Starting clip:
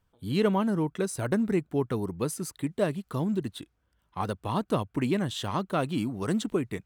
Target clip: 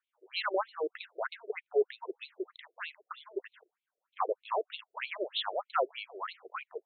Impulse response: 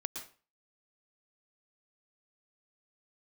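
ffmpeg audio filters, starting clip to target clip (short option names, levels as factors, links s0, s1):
-af "agate=range=0.447:threshold=0.00126:ratio=16:detection=peak,afftfilt=real='re*between(b*sr/1024,470*pow(3100/470,0.5+0.5*sin(2*PI*3.2*pts/sr))/1.41,470*pow(3100/470,0.5+0.5*sin(2*PI*3.2*pts/sr))*1.41)':imag='im*between(b*sr/1024,470*pow(3100/470,0.5+0.5*sin(2*PI*3.2*pts/sr))/1.41,470*pow(3100/470,0.5+0.5*sin(2*PI*3.2*pts/sr))*1.41)':win_size=1024:overlap=0.75,volume=1.5"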